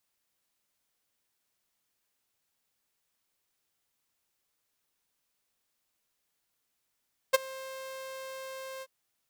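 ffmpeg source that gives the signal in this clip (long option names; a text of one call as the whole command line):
ffmpeg -f lavfi -i "aevalsrc='0.2*(2*mod(529*t,1)-1)':duration=1.536:sample_rate=44100,afade=type=in:duration=0.016,afade=type=out:start_time=0.016:duration=0.02:silence=0.0708,afade=type=out:start_time=1.49:duration=0.046" out.wav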